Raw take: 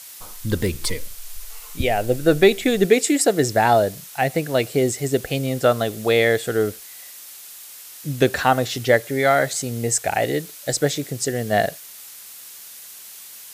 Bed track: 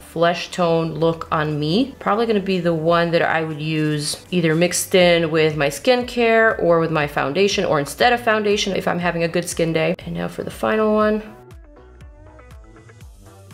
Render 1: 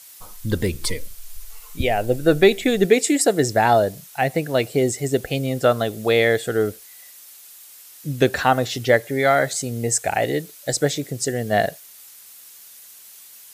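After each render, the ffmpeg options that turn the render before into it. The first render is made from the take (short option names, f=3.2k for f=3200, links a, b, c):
-af "afftdn=nr=6:nf=-41"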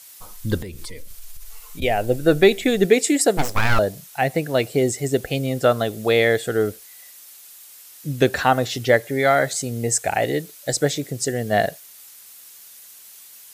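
-filter_complex "[0:a]asettb=1/sr,asplit=3[a][b][c];[a]atrim=end=0.624[d];[b]atrim=start=0.62:end=1.82,asetpts=PTS-STARTPTS,afade=t=in:d=0.004:c=qsin,afade=t=out:st=1.196:d=0.004:c=qsin,acompressor=threshold=-30dB:ratio=6:attack=3.2:release=140:knee=1:detection=peak[e];[c]atrim=start=1.816[f];[d][e]acrossfade=d=0.004:c1=hsin:c2=qsin[g];[g][f]acrossfade=d=0.004:c1=qsin:c2=hsin,asettb=1/sr,asplit=3[h][i][j];[h]atrim=end=3.374[k];[i]atrim=start=3.37:end=3.79,asetpts=PTS-STARTPTS,afade=t=in:d=0.004:c=qsin,afade=t=out:st=0.416:d=0.004:c=qsin,aeval=exprs='abs(val(0))':c=same[l];[j]atrim=start=3.786[m];[k][l]acrossfade=d=0.004:c1=hsin:c2=qsin[n];[n][m]acrossfade=d=0.004:c1=qsin:c2=hsin"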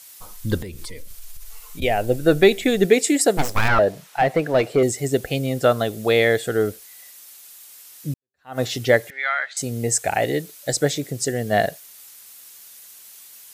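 -filter_complex "[0:a]asettb=1/sr,asplit=3[a][b][c];[a]atrim=end=3.684[d];[b]atrim=start=3.68:end=4.83,asetpts=PTS-STARTPTS,afade=t=in:d=0.004:c=qsin,afade=t=out:st=1.146:d=0.004:c=qsin,asplit=2[e][f];[f]highpass=f=720:p=1,volume=16dB,asoftclip=type=tanh:threshold=-6dB[g];[e][g]amix=inputs=2:normalize=0,lowpass=f=1.1k:p=1,volume=-6dB[h];[c]atrim=start=4.826[i];[d][h]acrossfade=d=0.004:c1=hsin:c2=qsin[j];[j][i]acrossfade=d=0.004:c1=qsin:c2=hsin,asettb=1/sr,asplit=3[k][l][m];[k]atrim=end=9.104[n];[l]atrim=start=9.1:end=9.57,asetpts=PTS-STARTPTS,afade=t=in:d=0.004:c=qsin,afade=t=out:st=0.466:d=0.004:c=qsin,asuperpass=centerf=2000:order=4:qfactor=1[o];[m]atrim=start=9.566[p];[n][o]acrossfade=d=0.004:c1=hsin:c2=qsin[q];[q][p]acrossfade=d=0.004:c1=qsin:c2=hsin,asplit=2[r][s];[r]atrim=end=8.14,asetpts=PTS-STARTPTS,afade=t=out:st=8.136:d=0.004:c=hsin[t];[s]atrim=start=8.14,asetpts=PTS-STARTPTS,afade=t=in:d=0.46:c=exp[u];[t][u]concat=n=2:v=0:a=1"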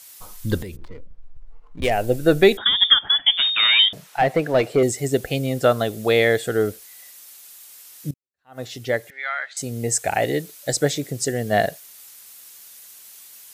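-filter_complex "[0:a]asplit=3[a][b][c];[a]afade=t=out:st=0.75:d=0.02[d];[b]adynamicsmooth=sensitivity=4.5:basefreq=520,afade=t=in:st=0.75:d=0.02,afade=t=out:st=1.9:d=0.02[e];[c]afade=t=in:st=1.9:d=0.02[f];[d][e][f]amix=inputs=3:normalize=0,asettb=1/sr,asplit=3[g][h][i];[g]atrim=end=2.574[j];[h]atrim=start=2.57:end=3.93,asetpts=PTS-STARTPTS,afade=t=in:d=0.004:c=qsin,afade=t=out:st=1.356:d=0.004:c=qsin,lowpass=f=3.1k:t=q:w=0.5098,lowpass=f=3.1k:t=q:w=0.6013,lowpass=f=3.1k:t=q:w=0.9,lowpass=f=3.1k:t=q:w=2.563,afreqshift=-3700[k];[i]atrim=start=3.926[l];[j][k]acrossfade=d=0.004:c1=hsin:c2=qsin[m];[m][l]acrossfade=d=0.004:c1=qsin:c2=hsin,asplit=2[n][o];[n]atrim=end=8.11,asetpts=PTS-STARTPTS,afade=t=out:st=8.106:d=0.004:c=hsin:silence=0.133352[p];[o]atrim=start=8.11,asetpts=PTS-STARTPTS,afade=t=in:d=2.08:silence=0.133352[q];[p][q]concat=n=2:v=0:a=1"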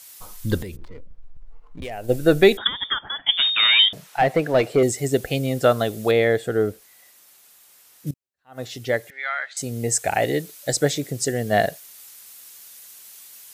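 -filter_complex "[0:a]asplit=3[a][b][c];[a]afade=t=out:st=0.83:d=0.02[d];[b]acompressor=threshold=-32dB:ratio=3:attack=3.2:release=140:knee=1:detection=peak,afade=t=in:st=0.83:d=0.02,afade=t=out:st=2.08:d=0.02[e];[c]afade=t=in:st=2.08:d=0.02[f];[d][e][f]amix=inputs=3:normalize=0,asettb=1/sr,asplit=3[g][h][i];[g]atrim=end=2.674[j];[h]atrim=start=2.67:end=3.29,asetpts=PTS-STARTPTS,afade=t=in:d=0.004:c=qsin,afade=t=out:st=0.616:d=0.004:c=qsin,lowpass=1.7k[k];[i]atrim=start=3.286[l];[j][k]acrossfade=d=0.004:c1=hsin:c2=qsin[m];[m][l]acrossfade=d=0.004:c1=qsin:c2=hsin,asettb=1/sr,asplit=3[n][o][p];[n]atrim=end=6.114[q];[o]atrim=start=6.11:end=8.07,asetpts=PTS-STARTPTS,afade=t=in:d=0.004:c=qsin,afade=t=out:st=1.956:d=0.004:c=qsin,highshelf=f=2.1k:g=-9[r];[p]atrim=start=8.066[s];[q][r]acrossfade=d=0.004:c1=hsin:c2=qsin[t];[t][s]acrossfade=d=0.004:c1=qsin:c2=hsin"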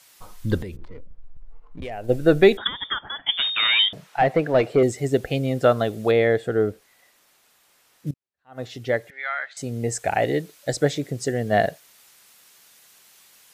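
-af "lowpass=f=2.8k:p=1"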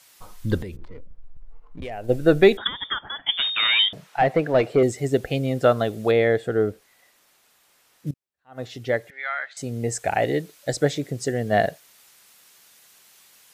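-af "aeval=exprs='0.668*(cos(1*acos(clip(val(0)/0.668,-1,1)))-cos(1*PI/2))+0.0106*(cos(3*acos(clip(val(0)/0.668,-1,1)))-cos(3*PI/2))':c=same"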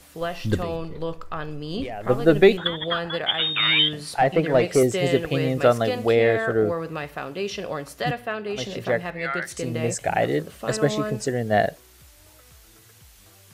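-filter_complex "[1:a]volume=-12dB[a];[0:a][a]amix=inputs=2:normalize=0"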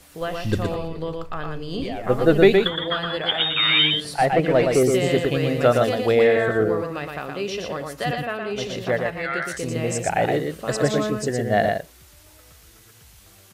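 -af "aecho=1:1:117:0.631"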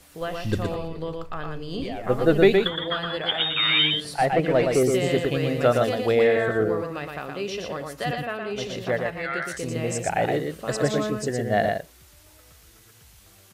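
-af "volume=-2.5dB"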